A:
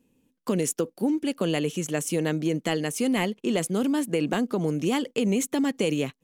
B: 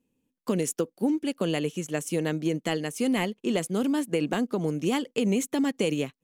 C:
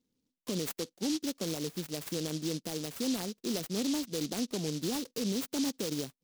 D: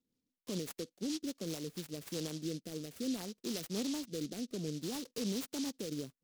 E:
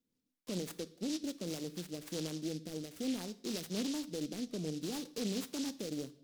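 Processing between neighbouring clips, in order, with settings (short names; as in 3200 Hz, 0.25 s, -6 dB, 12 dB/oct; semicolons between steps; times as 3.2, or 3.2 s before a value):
upward expander 1.5:1, over -39 dBFS
limiter -19.5 dBFS, peak gain reduction 6 dB; noise-modulated delay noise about 4600 Hz, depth 0.18 ms; gain -5.5 dB
rotary speaker horn 5 Hz, later 0.6 Hz, at 1.45; gain -3.5 dB
on a send at -13.5 dB: reverb RT60 0.55 s, pre-delay 3 ms; on the sum: Doppler distortion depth 0.25 ms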